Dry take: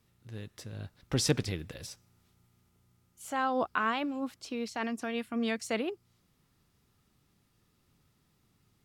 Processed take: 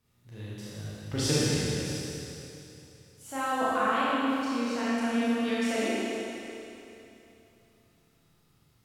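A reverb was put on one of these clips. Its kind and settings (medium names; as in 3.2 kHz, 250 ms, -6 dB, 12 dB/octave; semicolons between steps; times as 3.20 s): Schroeder reverb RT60 3 s, combs from 26 ms, DRR -9.5 dB; trim -5.5 dB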